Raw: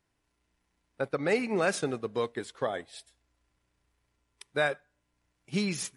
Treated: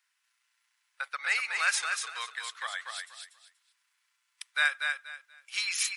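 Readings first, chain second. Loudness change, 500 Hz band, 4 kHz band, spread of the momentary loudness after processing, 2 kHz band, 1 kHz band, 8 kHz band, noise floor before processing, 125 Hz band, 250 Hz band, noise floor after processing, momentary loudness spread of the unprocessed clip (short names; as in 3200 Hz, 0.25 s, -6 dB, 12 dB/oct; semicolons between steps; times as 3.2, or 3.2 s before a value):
+0.5 dB, -23.0 dB, +7.0 dB, 18 LU, +6.5 dB, -1.0 dB, +6.5 dB, -78 dBFS, under -40 dB, under -40 dB, -77 dBFS, 11 LU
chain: HPF 1300 Hz 24 dB/oct; feedback echo 0.24 s, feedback 23%, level -5 dB; gain +6 dB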